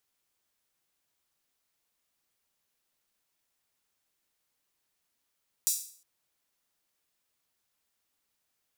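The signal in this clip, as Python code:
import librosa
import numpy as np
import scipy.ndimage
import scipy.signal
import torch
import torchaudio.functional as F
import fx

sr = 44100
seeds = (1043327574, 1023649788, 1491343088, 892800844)

y = fx.drum_hat_open(sr, length_s=0.36, from_hz=6400.0, decay_s=0.49)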